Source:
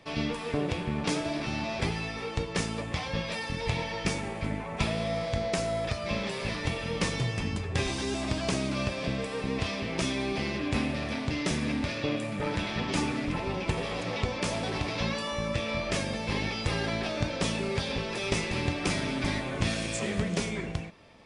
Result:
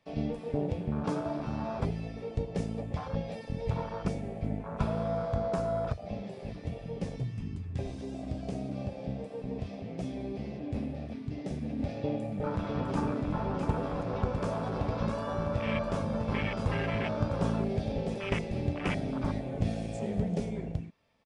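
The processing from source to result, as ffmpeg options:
-filter_complex "[0:a]asplit=3[s0][s1][s2];[s0]afade=t=out:st=5.92:d=0.02[s3];[s1]flanger=delay=6.1:depth=9.8:regen=-54:speed=1.6:shape=sinusoidal,afade=t=in:st=5.92:d=0.02,afade=t=out:st=11.78:d=0.02[s4];[s2]afade=t=in:st=11.78:d=0.02[s5];[s3][s4][s5]amix=inputs=3:normalize=0,asplit=3[s6][s7][s8];[s6]afade=t=out:st=12.62:d=0.02[s9];[s7]aecho=1:1:654:0.562,afade=t=in:st=12.62:d=0.02,afade=t=out:st=18.14:d=0.02[s10];[s8]afade=t=in:st=18.14:d=0.02[s11];[s9][s10][s11]amix=inputs=3:normalize=0,afwtdn=0.0282,equalizer=f=340:w=4.8:g=-7"

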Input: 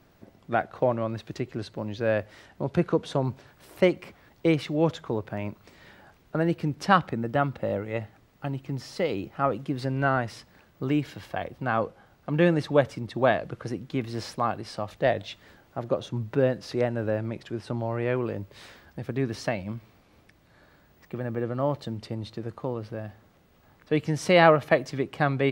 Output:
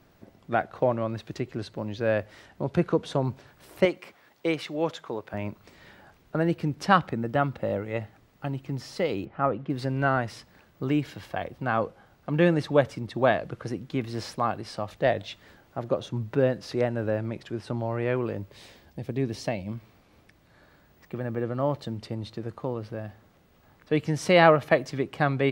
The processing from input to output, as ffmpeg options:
-filter_complex "[0:a]asettb=1/sr,asplit=3[s0][s1][s2];[s0]atrim=end=3.854[s3];[s1]atrim=start=3.85:end=5.34,asetpts=PTS-STARTPTS,afade=t=in:d=0.004:c=qsin,afade=t=out:st=1.486:d=0.004:c=qsin,highpass=f=480:p=1[s4];[s2]atrim=start=5.336[s5];[s3][s4]acrossfade=d=0.004:c1=hsin:c2=qsin[s6];[s6][s5]acrossfade=d=0.004:c1=qsin:c2=hsin,asettb=1/sr,asplit=3[s7][s8][s9];[s7]atrim=end=9.254[s10];[s8]atrim=start=9.25:end=9.7,asetpts=PTS-STARTPTS,afade=t=in:d=0.004:c=qsin,afade=t=out:st=0.446:d=0.004:c=qsin,lowpass=2300[s11];[s9]atrim=start=9.696[s12];[s10][s11]acrossfade=d=0.004:c1=hsin:c2=qsin[s13];[s13][s12]acrossfade=d=0.004:c1=qsin:c2=hsin,asettb=1/sr,asplit=3[s14][s15][s16];[s14]atrim=end=18.564[s17];[s15]atrim=start=18.56:end=19.72,asetpts=PTS-STARTPTS,afade=t=in:d=0.004:c=qsin,afade=t=out:st=1.156:d=0.004:c=qsin,equalizer=f=1400:t=o:w=0.84:g=-9.5[s18];[s16]atrim=start=19.716[s19];[s17][s18]acrossfade=d=0.004:c1=hsin:c2=qsin[s20];[s20][s19]acrossfade=d=0.004:c1=qsin:c2=hsin"

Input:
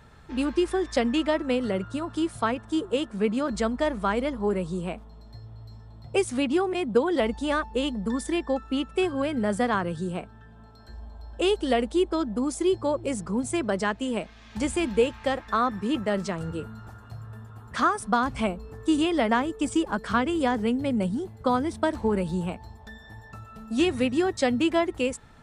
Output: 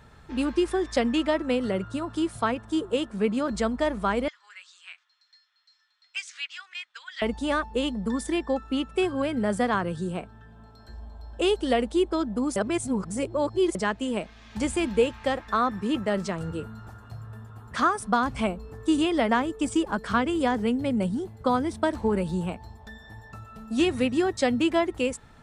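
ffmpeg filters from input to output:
-filter_complex "[0:a]asettb=1/sr,asplit=3[s0][s1][s2];[s0]atrim=end=4.284[s3];[s1]atrim=start=4.28:end=7.22,asetpts=PTS-STARTPTS,afade=t=in:d=0.004:c=qsin,afade=t=out:st=2.936:d=0.004:c=qsin,asuperpass=centerf=3400:order=8:qfactor=0.62[s4];[s2]atrim=start=7.216[s5];[s3][s4]acrossfade=d=0.004:c1=hsin:c2=qsin[s6];[s6][s5]acrossfade=d=0.004:c1=qsin:c2=hsin,asplit=3[s7][s8][s9];[s7]atrim=end=12.562[s10];[s8]atrim=start=12.558:end=13.752,asetpts=PTS-STARTPTS,areverse[s11];[s9]atrim=start=13.748[s12];[s10][s11]acrossfade=d=0.004:c1=hsin:c2=hsin[s13];[s13][s12]acrossfade=d=0.004:c1=hsin:c2=hsin"

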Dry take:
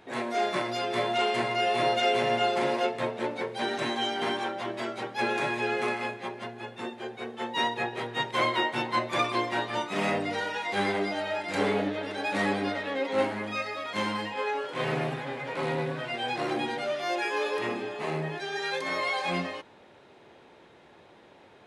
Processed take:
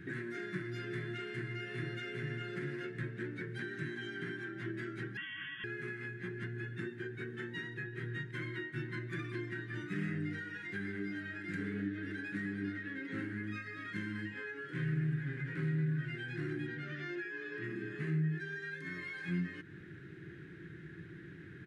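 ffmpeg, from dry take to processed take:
-filter_complex "[0:a]asettb=1/sr,asplit=3[s0][s1][s2];[s0]atrim=end=5.174[s3];[s1]atrim=start=5.17:end=5.64,asetpts=PTS-STARTPTS,afade=t=in:d=0.004:c=qsin,afade=t=out:st=0.466:d=0.004:c=qsin,lowpass=f=3100:t=q:w=0.5098,lowpass=f=3100:t=q:w=0.6013,lowpass=f=3100:t=q:w=0.9,lowpass=f=3100:t=q:w=2.563,afreqshift=-3600[s4];[s2]atrim=start=5.636[s5];[s3][s4]acrossfade=d=0.004:c1=hsin:c2=qsin[s6];[s6][s5]acrossfade=d=0.004:c1=qsin:c2=hsin,asettb=1/sr,asplit=3[s7][s8][s9];[s7]atrim=end=16.674[s10];[s8]atrim=start=16.67:end=17.64,asetpts=PTS-STARTPTS,afade=t=in:d=0.004:c=qsin,afade=t=out:st=0.966:d=0.004:c=qsin,lowpass=5400[s11];[s9]atrim=start=17.636[s12];[s10][s11]acrossfade=d=0.004:c1=hsin:c2=qsin[s13];[s13][s12]acrossfade=d=0.004:c1=qsin:c2=hsin,firequalizer=gain_entry='entry(160,0);entry(230,-18);entry(320,-2);entry(550,-29);entry(900,-30);entry(1600,4);entry(2400,-10);entry(3900,-15);entry(9600,-12)':delay=0.05:min_phase=1,acompressor=threshold=0.00355:ratio=6,equalizer=f=180:t=o:w=1.7:g=13.5,volume=2"

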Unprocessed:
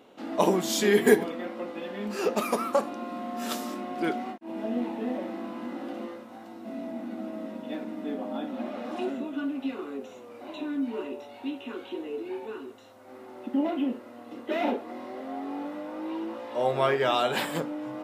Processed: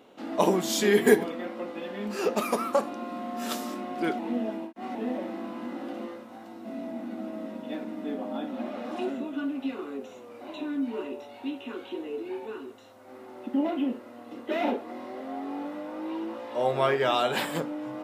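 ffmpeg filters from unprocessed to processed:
-filter_complex "[0:a]asplit=3[s0][s1][s2];[s0]atrim=end=4.192[s3];[s1]atrim=start=4.188:end=4.952,asetpts=PTS-STARTPTS,areverse[s4];[s2]atrim=start=4.948[s5];[s3][s4]acrossfade=d=0.004:c1=hsin:c2=hsin[s6];[s6][s5]acrossfade=d=0.004:c1=hsin:c2=hsin"

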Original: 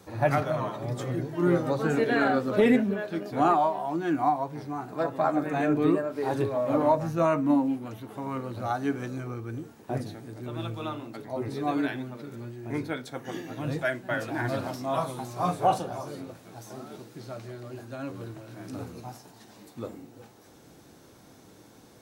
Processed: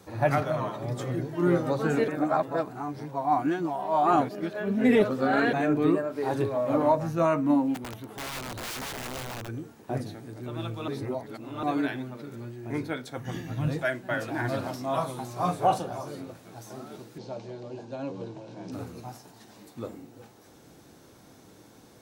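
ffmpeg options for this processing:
-filter_complex "[0:a]asplit=3[s0][s1][s2];[s0]afade=t=out:st=7.74:d=0.02[s3];[s1]aeval=exprs='(mod(35.5*val(0)+1,2)-1)/35.5':c=same,afade=t=in:st=7.74:d=0.02,afade=t=out:st=9.47:d=0.02[s4];[s2]afade=t=in:st=9.47:d=0.02[s5];[s3][s4][s5]amix=inputs=3:normalize=0,asplit=3[s6][s7][s8];[s6]afade=t=out:st=13.17:d=0.02[s9];[s7]asubboost=boost=7:cutoff=130,afade=t=in:st=13.17:d=0.02,afade=t=out:st=13.67:d=0.02[s10];[s8]afade=t=in:st=13.67:d=0.02[s11];[s9][s10][s11]amix=inputs=3:normalize=0,asettb=1/sr,asplit=3[s12][s13][s14];[s12]atrim=end=17.184[s15];[s13]atrim=start=17.18:end=18.72,asetpts=PTS-STARTPTS,afade=t=in:d=0.004:c=qsin,afade=t=out:st=1.536:d=0.004:c=qsin,highpass=140,equalizer=f=170:t=q:w=4:g=10,equalizer=f=490:t=q:w=4:g=7,equalizer=f=900:t=q:w=4:g=8,equalizer=f=1300:t=q:w=4:g=-10,equalizer=f=1900:t=q:w=4:g=-7,lowpass=f=6600:w=0.5412,lowpass=f=6600:w=1.3066[s16];[s14]atrim=start=18.716[s17];[s15][s16]acrossfade=d=0.004:c1=hsin:c2=qsin[s18];[s18][s17]acrossfade=d=0.004:c1=qsin:c2=hsin,asplit=5[s19][s20][s21][s22][s23];[s19]atrim=end=2.082[s24];[s20]atrim=start=2.078:end=5.532,asetpts=PTS-STARTPTS,areverse[s25];[s21]atrim=start=5.528:end=10.882[s26];[s22]atrim=start=10.878:end=11.632,asetpts=PTS-STARTPTS,areverse[s27];[s23]atrim=start=11.628[s28];[s24][s25]acrossfade=d=0.004:c1=hsin:c2=hsin[s29];[s29][s26]acrossfade=d=0.004:c1=hsin:c2=hsin[s30];[s30][s27]acrossfade=d=0.004:c1=hsin:c2=hsin[s31];[s31][s28]acrossfade=d=0.004:c1=hsin:c2=hsin"

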